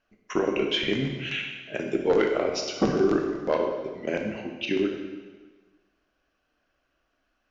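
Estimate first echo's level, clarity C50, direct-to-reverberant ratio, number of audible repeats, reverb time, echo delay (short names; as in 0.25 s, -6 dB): none, 4.5 dB, 1.5 dB, none, 1.4 s, none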